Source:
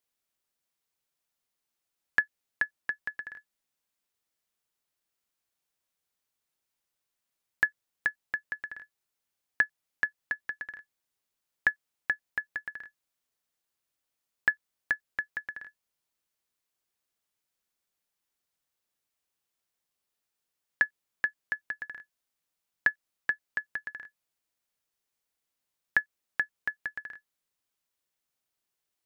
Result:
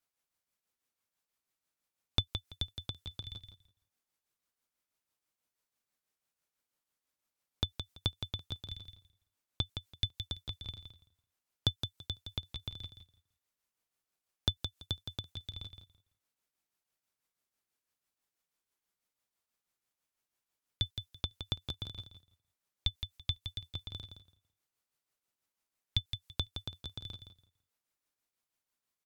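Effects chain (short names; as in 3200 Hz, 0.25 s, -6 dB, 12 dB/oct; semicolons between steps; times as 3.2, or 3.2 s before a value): HPF 410 Hz 12 dB/oct; bell 990 Hz -13 dB 2.2 oct; in parallel at +1 dB: compressor, threshold -42 dBFS, peak gain reduction 13.5 dB; on the sum: tremolo triangle 6.1 Hz, depth 60%; vibrato 13 Hz 12 cents; ring modulator 1800 Hz; on a send: feedback echo 0.167 s, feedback 19%, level -8 dB; on the sum: mismatched tape noise reduction decoder only; gain +5 dB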